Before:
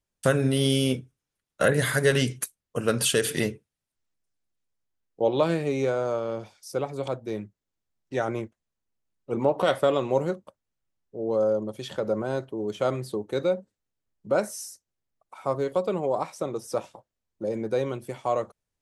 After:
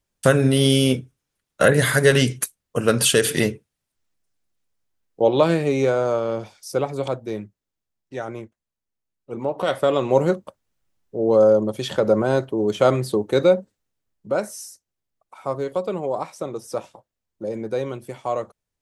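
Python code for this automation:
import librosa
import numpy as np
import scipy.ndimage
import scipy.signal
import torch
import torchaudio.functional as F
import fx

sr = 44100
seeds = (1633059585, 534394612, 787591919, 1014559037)

y = fx.gain(x, sr, db=fx.line((6.93, 6.0), (8.17, -3.0), (9.41, -3.0), (10.34, 9.0), (13.56, 9.0), (14.35, 1.0)))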